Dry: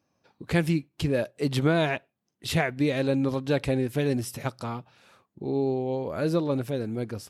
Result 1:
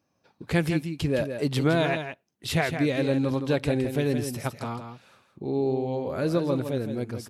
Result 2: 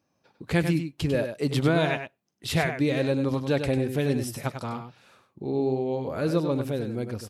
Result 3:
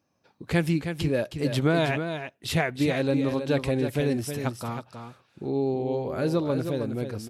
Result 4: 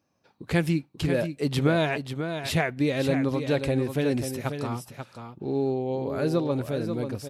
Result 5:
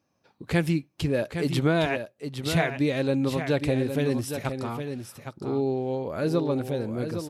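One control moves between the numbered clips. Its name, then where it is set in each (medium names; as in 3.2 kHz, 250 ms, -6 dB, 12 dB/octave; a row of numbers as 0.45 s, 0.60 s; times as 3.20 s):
delay, time: 164 ms, 98 ms, 317 ms, 538 ms, 812 ms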